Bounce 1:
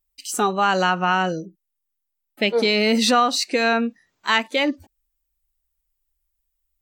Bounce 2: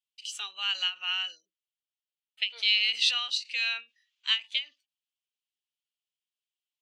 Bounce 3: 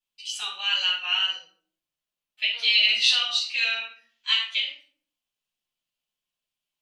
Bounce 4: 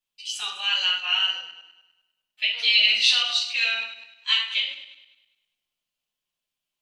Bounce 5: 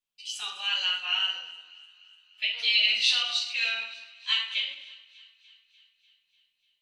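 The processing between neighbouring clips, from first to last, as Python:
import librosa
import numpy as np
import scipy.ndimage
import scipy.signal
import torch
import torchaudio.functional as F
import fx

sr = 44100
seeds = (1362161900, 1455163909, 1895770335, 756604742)

y1 = fx.ladder_bandpass(x, sr, hz=3300.0, resonance_pct=65)
y1 = fx.end_taper(y1, sr, db_per_s=270.0)
y1 = y1 * 10.0 ** (5.5 / 20.0)
y2 = fx.wow_flutter(y1, sr, seeds[0], rate_hz=2.1, depth_cents=28.0)
y2 = fx.room_shoebox(y2, sr, seeds[1], volume_m3=530.0, walls='furnished', distance_m=8.7)
y2 = y2 * 10.0 ** (-5.0 / 20.0)
y3 = fx.reverse_delay_fb(y2, sr, ms=101, feedback_pct=52, wet_db=-13)
y3 = y3 * 10.0 ** (1.0 / 20.0)
y4 = fx.echo_thinned(y3, sr, ms=296, feedback_pct=67, hz=920.0, wet_db=-22.0)
y4 = y4 * 10.0 ** (-4.5 / 20.0)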